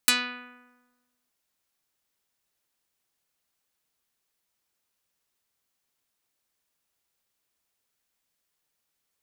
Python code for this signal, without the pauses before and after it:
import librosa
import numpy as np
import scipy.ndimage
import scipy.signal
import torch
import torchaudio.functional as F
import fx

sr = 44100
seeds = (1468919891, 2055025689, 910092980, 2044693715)

y = fx.pluck(sr, length_s=1.22, note=59, decay_s=1.24, pick=0.46, brightness='dark')